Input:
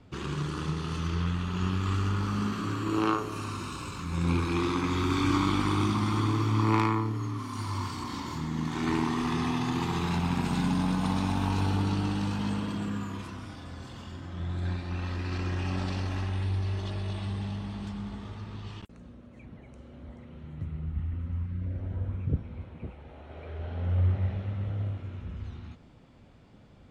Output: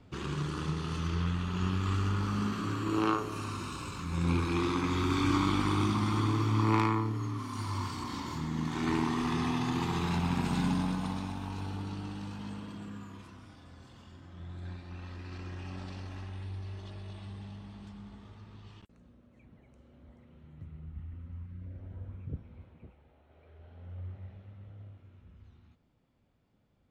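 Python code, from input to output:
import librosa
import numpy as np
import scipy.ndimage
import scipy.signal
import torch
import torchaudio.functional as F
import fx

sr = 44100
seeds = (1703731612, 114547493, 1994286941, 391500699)

y = fx.gain(x, sr, db=fx.line((10.7, -2.0), (11.4, -10.5), (22.65, -10.5), (23.23, -17.0)))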